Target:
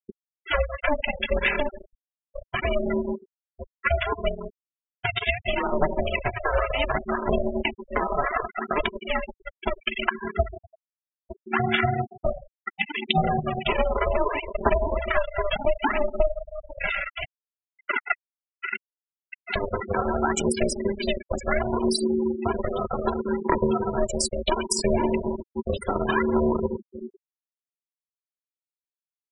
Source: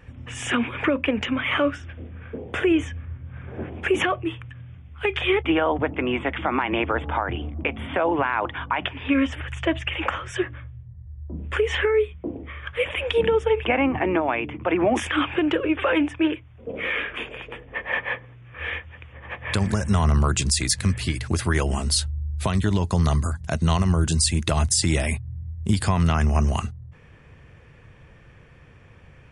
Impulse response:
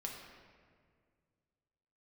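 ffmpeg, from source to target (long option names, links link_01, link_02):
-filter_complex "[0:a]aecho=1:1:3:0.66,acrossover=split=120|350[link_01][link_02][link_03];[link_01]acompressor=threshold=-24dB:ratio=4[link_04];[link_02]acompressor=threshold=-27dB:ratio=4[link_05];[link_03]acompressor=threshold=-22dB:ratio=4[link_06];[link_04][link_05][link_06]amix=inputs=3:normalize=0,aphaser=in_gain=1:out_gain=1:delay=4.2:decay=0.69:speed=0.68:type=sinusoidal,asplit=2[link_07][link_08];[1:a]atrim=start_sample=2205[link_09];[link_08][link_09]afir=irnorm=-1:irlink=0,volume=2.5dB[link_10];[link_07][link_10]amix=inputs=2:normalize=0,aeval=exprs='val(0)*sin(2*PI*300*n/s)':channel_layout=same,aeval=exprs='sgn(val(0))*max(abs(val(0))-0.0531,0)':channel_layout=same,bandreject=frequency=50:width_type=h:width=6,bandreject=frequency=100:width_type=h:width=6,bandreject=frequency=150:width_type=h:width=6,bandreject=frequency=200:width_type=h:width=6,bandreject=frequency=250:width_type=h:width=6,acompressor=threshold=-17dB:ratio=5,adynamicequalizer=threshold=0.0141:dfrequency=200:dqfactor=1.3:tfrequency=200:tqfactor=1.3:attack=5:release=100:ratio=0.375:range=1.5:mode=cutabove:tftype=bell,afftfilt=real='re*gte(hypot(re,im),0.1)':imag='im*gte(hypot(re,im),0.1)':win_size=1024:overlap=0.75"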